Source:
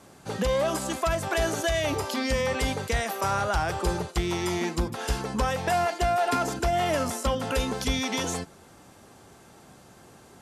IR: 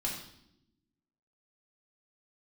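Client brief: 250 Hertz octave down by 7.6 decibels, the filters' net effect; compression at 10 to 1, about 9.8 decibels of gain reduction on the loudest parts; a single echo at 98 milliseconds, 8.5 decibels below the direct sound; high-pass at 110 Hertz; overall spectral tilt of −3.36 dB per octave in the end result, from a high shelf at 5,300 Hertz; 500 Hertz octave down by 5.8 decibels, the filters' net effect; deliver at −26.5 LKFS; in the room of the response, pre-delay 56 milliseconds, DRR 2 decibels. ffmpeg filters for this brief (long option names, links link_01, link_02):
-filter_complex "[0:a]highpass=110,equalizer=frequency=250:width_type=o:gain=-8,equalizer=frequency=500:width_type=o:gain=-6.5,highshelf=frequency=5300:gain=7,acompressor=threshold=-34dB:ratio=10,aecho=1:1:98:0.376,asplit=2[link_01][link_02];[1:a]atrim=start_sample=2205,adelay=56[link_03];[link_02][link_03]afir=irnorm=-1:irlink=0,volume=-5.5dB[link_04];[link_01][link_04]amix=inputs=2:normalize=0,volume=7.5dB"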